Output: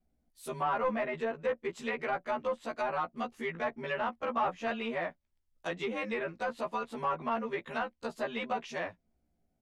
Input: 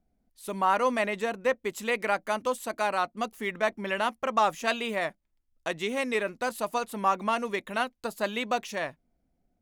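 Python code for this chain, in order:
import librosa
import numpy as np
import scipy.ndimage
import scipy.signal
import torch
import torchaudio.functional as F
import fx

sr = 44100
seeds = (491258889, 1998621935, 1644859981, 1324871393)

y = fx.frame_reverse(x, sr, frame_ms=35.0)
y = 10.0 ** (-23.5 / 20.0) * np.tanh(y / 10.0 ** (-23.5 / 20.0))
y = fx.env_lowpass_down(y, sr, base_hz=2000.0, full_db=-29.0)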